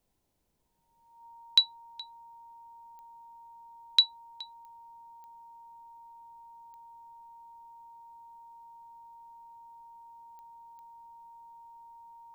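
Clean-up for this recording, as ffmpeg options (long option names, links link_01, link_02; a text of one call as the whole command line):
ffmpeg -i in.wav -af "adeclick=threshold=4,bandreject=frequency=930:width=30,agate=range=-21dB:threshold=-45dB" out.wav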